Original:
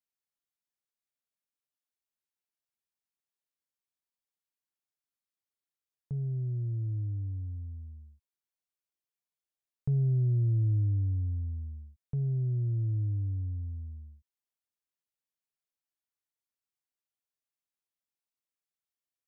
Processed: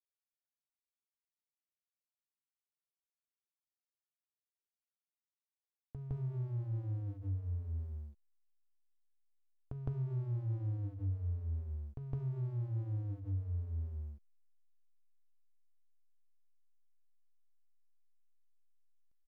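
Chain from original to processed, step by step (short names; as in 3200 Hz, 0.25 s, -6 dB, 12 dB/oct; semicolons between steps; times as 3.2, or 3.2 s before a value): notches 50/100/150/200/250/300/350/400 Hz; comb 2.8 ms, depth 76%; compressor 6:1, threshold -41 dBFS, peak gain reduction 15 dB; backlash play -46.5 dBFS; on a send: reverse echo 0.161 s -5.5 dB; on the sum: gain +4.5 dB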